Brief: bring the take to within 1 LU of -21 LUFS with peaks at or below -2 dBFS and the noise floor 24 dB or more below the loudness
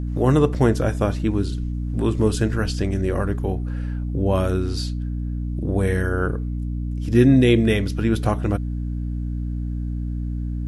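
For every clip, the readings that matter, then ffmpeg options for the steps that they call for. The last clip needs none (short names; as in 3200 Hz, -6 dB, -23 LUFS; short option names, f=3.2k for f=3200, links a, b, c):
hum 60 Hz; harmonics up to 300 Hz; hum level -23 dBFS; loudness -22.0 LUFS; peak -3.5 dBFS; loudness target -21.0 LUFS
-> -af "bandreject=f=60:t=h:w=4,bandreject=f=120:t=h:w=4,bandreject=f=180:t=h:w=4,bandreject=f=240:t=h:w=4,bandreject=f=300:t=h:w=4"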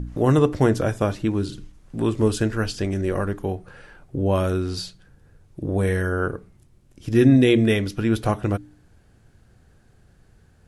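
hum none; loudness -22.0 LUFS; peak -4.5 dBFS; loudness target -21.0 LUFS
-> -af "volume=1dB"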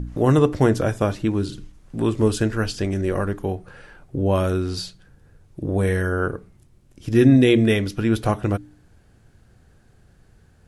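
loudness -21.0 LUFS; peak -3.5 dBFS; noise floor -56 dBFS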